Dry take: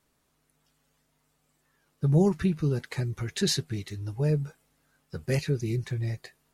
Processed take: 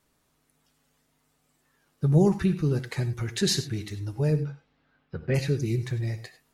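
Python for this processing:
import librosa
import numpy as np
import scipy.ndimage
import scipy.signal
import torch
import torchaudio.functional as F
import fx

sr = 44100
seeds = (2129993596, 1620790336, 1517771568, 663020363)

y = fx.lowpass(x, sr, hz=fx.line((4.36, 5100.0), (5.34, 3000.0)), slope=24, at=(4.36, 5.34), fade=0.02)
y = fx.rev_gated(y, sr, seeds[0], gate_ms=120, shape='rising', drr_db=12.0)
y = y * librosa.db_to_amplitude(1.5)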